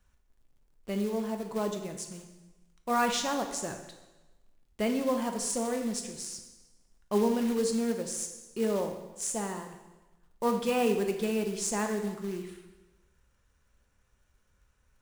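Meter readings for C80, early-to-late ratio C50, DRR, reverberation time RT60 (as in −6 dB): 9.0 dB, 7.0 dB, 4.5 dB, 1.1 s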